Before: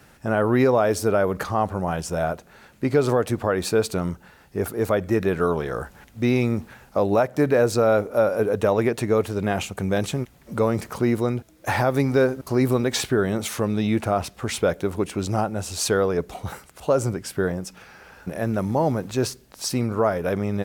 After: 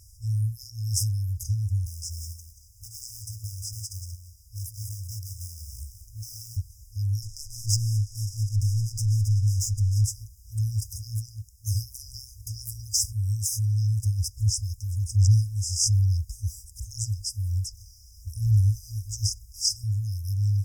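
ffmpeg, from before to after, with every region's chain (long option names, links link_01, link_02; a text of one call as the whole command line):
ffmpeg -i in.wav -filter_complex "[0:a]asettb=1/sr,asplit=3[link_01][link_02][link_03];[link_01]atrim=end=1.864[link_04];[link_02]atrim=start=1.86:end=6.57,asetpts=PTS-STARTPTS,afade=type=in:duration=0.004:curve=qsin,afade=type=out:start_time=4.706:duration=0.004:curve=qsin,acrossover=split=250|720|5200[link_05][link_06][link_07][link_08];[link_05]acompressor=threshold=-41dB:ratio=3[link_09];[link_06]acompressor=threshold=-30dB:ratio=3[link_10];[link_07]acompressor=threshold=-34dB:ratio=3[link_11];[link_08]acompressor=threshold=-47dB:ratio=3[link_12];[link_09][link_10][link_11][link_12]amix=inputs=4:normalize=0,acrusher=bits=4:mode=log:mix=0:aa=0.000001,aecho=1:1:182:0.376,atrim=end_sample=207711[link_13];[link_03]atrim=start=6.566[link_14];[link_04][link_13]acrossfade=duration=0.004:curve1=hsin:curve2=qsin[link_15];[link_15][link_14]acrossfade=duration=0.004:curve1=qsin:curve2=hsin,asettb=1/sr,asplit=3[link_16][link_17][link_18];[link_16]atrim=end=7.224[link_19];[link_17]atrim=start=7.22:end=10.05,asetpts=PTS-STARTPTS,afade=type=in:duration=0.004:curve=qsin,afade=type=out:start_time=2.826:duration=0.004:curve=qsin,aeval=exprs='val(0)+0.5*0.0316*sgn(val(0))':channel_layout=same,aecho=1:1:7:0.8,atrim=end_sample=124803,adynamicsmooth=sensitivity=6.5:basefreq=1800[link_20];[link_18]atrim=start=10.046[link_21];[link_19][link_20]acrossfade=duration=0.004:curve1=hsin:curve2=qsin[link_22];[link_22][link_21]acrossfade=duration=0.004:curve1=qsin:curve2=hsin,asettb=1/sr,asplit=3[link_23][link_24][link_25];[link_23]atrim=end=14.374[link_26];[link_24]atrim=start=14.37:end=19.84,asetpts=PTS-STARTPTS,afade=type=in:duration=0.004:curve=qsin,afade=type=out:start_time=5.466:duration=0.004:curve=qsin,acrossover=split=7900[link_27][link_28];[link_28]acompressor=threshold=-50dB:ratio=4:attack=1:release=60[link_29];[link_27][link_29]amix=inputs=2:normalize=0,aphaser=in_gain=1:out_gain=1:delay=3.6:decay=0.55:speed=1.2:type=sinusoidal[link_30];[link_25]atrim=start=19.836[link_31];[link_26][link_30]acrossfade=duration=0.004:curve1=hsin:curve2=qsin[link_32];[link_32][link_31]acrossfade=duration=0.004:curve1=qsin:curve2=hsin,afftfilt=real='re*(1-between(b*sr/4096,110,4900))':imag='im*(1-between(b*sr/4096,110,4900))':win_size=4096:overlap=0.75,highshelf=frequency=6100:gain=-5,volume=8dB" out.wav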